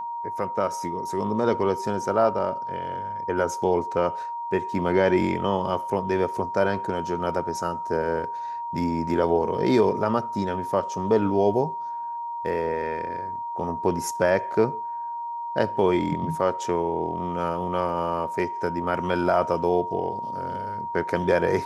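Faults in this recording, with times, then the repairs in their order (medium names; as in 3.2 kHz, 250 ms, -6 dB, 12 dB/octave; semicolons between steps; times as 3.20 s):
whine 940 Hz -29 dBFS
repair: band-stop 940 Hz, Q 30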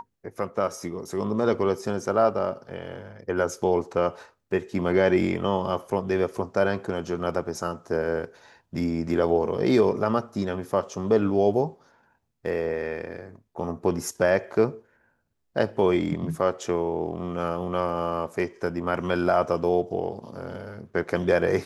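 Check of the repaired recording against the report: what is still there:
nothing left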